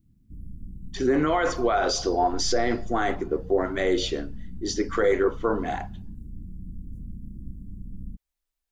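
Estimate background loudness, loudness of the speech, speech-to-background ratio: −42.5 LKFS, −25.5 LKFS, 17.0 dB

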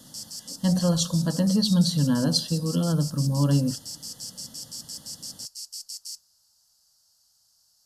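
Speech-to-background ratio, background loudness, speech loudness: 13.0 dB, −36.5 LKFS, −23.5 LKFS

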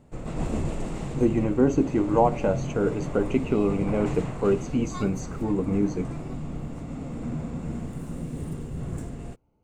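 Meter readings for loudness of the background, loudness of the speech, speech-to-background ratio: −34.0 LKFS, −25.5 LKFS, 8.5 dB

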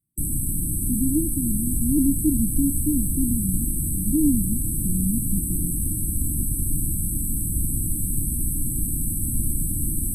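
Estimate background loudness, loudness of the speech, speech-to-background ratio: −25.0 LKFS, −26.0 LKFS, −1.0 dB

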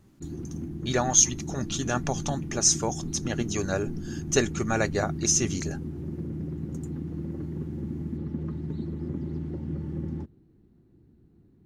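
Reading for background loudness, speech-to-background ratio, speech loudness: −35.0 LKFS, 9.0 dB, −26.0 LKFS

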